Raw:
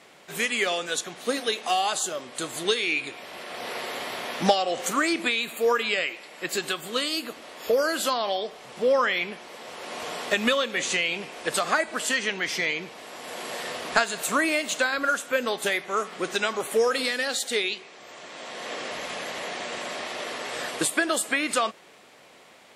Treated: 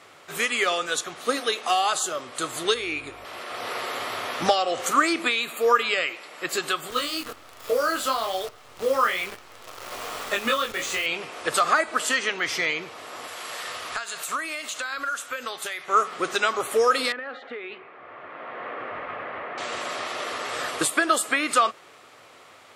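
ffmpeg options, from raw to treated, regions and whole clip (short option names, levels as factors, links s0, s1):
-filter_complex "[0:a]asettb=1/sr,asplit=3[s0][s1][s2];[s0]atrim=end=2.744[s3];[s1]atrim=start=2.74:end=3.25,asetpts=PTS-STARTPTS,afade=t=in:d=0.004:c=qsin,afade=t=out:st=0.506:d=0.004:c=qsin,equalizer=f=3800:t=o:w=2.5:g=-7,aeval=exprs='val(0)+0.00141*(sin(2*PI*50*n/s)+sin(2*PI*2*50*n/s)/2+sin(2*PI*3*50*n/s)/3+sin(2*PI*4*50*n/s)/4+sin(2*PI*5*50*n/s)/5)':c=same[s4];[s2]atrim=start=3.246[s5];[s3][s4]acrossfade=d=0.004:c1=hsin:c2=qsin[s6];[s6][s5]acrossfade=d=0.004:c1=qsin:c2=hsin,asettb=1/sr,asplit=3[s7][s8][s9];[s7]atrim=end=6.904[s10];[s8]atrim=start=6.9:end=11.06,asetpts=PTS-STARTPTS,afade=t=in:d=0.004:c=qsin,afade=t=out:st=4.156:d=0.004:c=qsin,highpass=46,flanger=delay=20:depth=2.7:speed=1.2,acrusher=bits=7:dc=4:mix=0:aa=0.000001[s11];[s9]atrim=start=11.056[s12];[s10][s11]acrossfade=d=0.004:c1=hsin:c2=qsin[s13];[s13][s12]acrossfade=d=0.004:c1=qsin:c2=hsin,asettb=1/sr,asplit=3[s14][s15][s16];[s14]atrim=end=13.274[s17];[s15]atrim=start=13.27:end=15.88,asetpts=PTS-STARTPTS,afade=t=in:d=0.004:c=qsin,afade=t=out:st=2.606:d=0.004:c=qsin,equalizer=f=260:w=0.32:g=-9.5,acompressor=threshold=0.0355:ratio=6:attack=3.2:release=140:knee=1:detection=peak[s18];[s16]atrim=start=15.876[s19];[s17][s18]acrossfade=d=0.004:c1=hsin:c2=qsin[s20];[s20][s19]acrossfade=d=0.004:c1=qsin:c2=hsin,asettb=1/sr,asplit=3[s21][s22][s23];[s21]atrim=end=17.124[s24];[s22]atrim=start=17.12:end=19.58,asetpts=PTS-STARTPTS,afade=t=in:d=0.004:c=qsin,afade=t=out:st=2.456:d=0.004:c=qsin,lowpass=f=2200:w=0.5412,lowpass=f=2200:w=1.3066,acompressor=threshold=0.0251:ratio=10:attack=3.2:release=140:knee=1:detection=peak[s25];[s23]atrim=start=19.576[s26];[s24][s25]acrossfade=d=0.004:c1=hsin:c2=qsin[s27];[s27][s26]acrossfade=d=0.004:c1=qsin:c2=hsin,equalizer=f=100:t=o:w=0.33:g=9,equalizer=f=200:t=o:w=0.33:g=-10,equalizer=f=1250:t=o:w=0.33:g=9,alimiter=level_in=2.37:limit=0.891:release=50:level=0:latency=1,volume=0.473"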